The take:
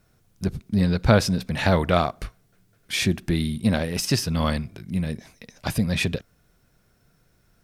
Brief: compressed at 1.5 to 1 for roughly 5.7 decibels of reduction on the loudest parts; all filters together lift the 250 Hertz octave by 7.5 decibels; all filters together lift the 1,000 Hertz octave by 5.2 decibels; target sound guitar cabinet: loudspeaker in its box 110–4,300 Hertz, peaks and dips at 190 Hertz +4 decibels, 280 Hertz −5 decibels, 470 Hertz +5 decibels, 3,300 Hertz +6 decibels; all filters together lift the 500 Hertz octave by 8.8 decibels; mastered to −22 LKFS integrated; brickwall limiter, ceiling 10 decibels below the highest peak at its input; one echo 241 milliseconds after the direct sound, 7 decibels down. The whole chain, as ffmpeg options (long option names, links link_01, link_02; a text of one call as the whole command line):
ffmpeg -i in.wav -af "equalizer=frequency=250:width_type=o:gain=8,equalizer=frequency=500:width_type=o:gain=5,equalizer=frequency=1000:width_type=o:gain=4.5,acompressor=threshold=-21dB:ratio=1.5,alimiter=limit=-12dB:level=0:latency=1,highpass=110,equalizer=frequency=190:width_type=q:width=4:gain=4,equalizer=frequency=280:width_type=q:width=4:gain=-5,equalizer=frequency=470:width_type=q:width=4:gain=5,equalizer=frequency=3300:width_type=q:width=4:gain=6,lowpass=frequency=4300:width=0.5412,lowpass=frequency=4300:width=1.3066,aecho=1:1:241:0.447,volume=1dB" out.wav